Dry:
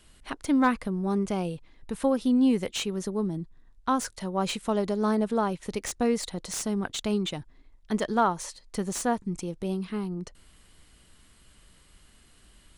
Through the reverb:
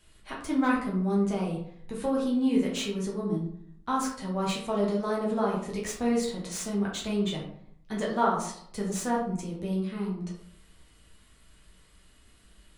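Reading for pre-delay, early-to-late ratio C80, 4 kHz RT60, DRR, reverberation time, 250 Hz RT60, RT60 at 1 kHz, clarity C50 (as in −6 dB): 7 ms, 9.0 dB, 0.35 s, −4.0 dB, 0.65 s, 0.75 s, 0.60 s, 4.5 dB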